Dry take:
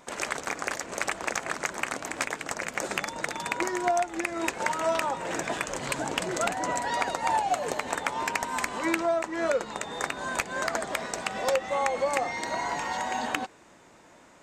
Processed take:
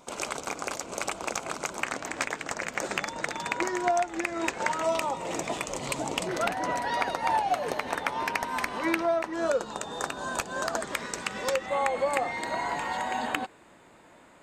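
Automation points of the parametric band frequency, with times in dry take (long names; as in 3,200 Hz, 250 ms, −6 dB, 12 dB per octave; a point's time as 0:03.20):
parametric band −14 dB 0.32 octaves
1,800 Hz
from 0:01.82 11,000 Hz
from 0:04.83 1,600 Hz
from 0:06.27 7,400 Hz
from 0:09.33 2,100 Hz
from 0:10.81 700 Hz
from 0:11.66 5,800 Hz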